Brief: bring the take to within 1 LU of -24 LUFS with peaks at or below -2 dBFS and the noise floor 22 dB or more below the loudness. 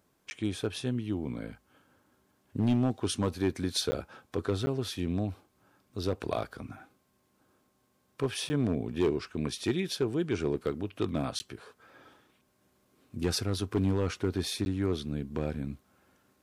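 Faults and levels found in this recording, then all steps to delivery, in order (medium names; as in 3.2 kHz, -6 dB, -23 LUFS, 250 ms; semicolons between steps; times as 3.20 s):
clipped samples 0.5%; clipping level -20.0 dBFS; dropouts 6; longest dropout 10 ms; loudness -32.0 LUFS; peak level -20.0 dBFS; loudness target -24.0 LUFS
-> clip repair -20 dBFS; interpolate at 0.30/3.91/4.66/8.49/11.39/14.65 s, 10 ms; trim +8 dB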